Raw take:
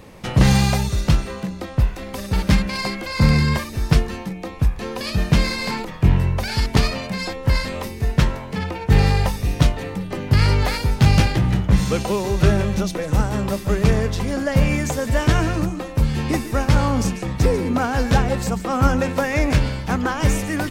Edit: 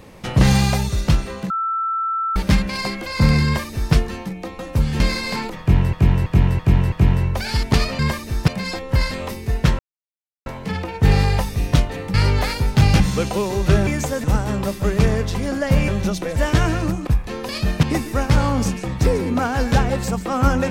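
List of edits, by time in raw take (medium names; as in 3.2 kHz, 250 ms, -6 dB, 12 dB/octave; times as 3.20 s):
1.50–2.36 s: bleep 1.33 kHz -19 dBFS
3.45–3.94 s: copy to 7.02 s
4.59–5.35 s: swap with 15.81–16.22 s
5.95–6.28 s: loop, 5 plays
8.33 s: insert silence 0.67 s
10.01–10.38 s: delete
11.24–11.74 s: delete
12.61–13.09 s: swap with 14.73–15.10 s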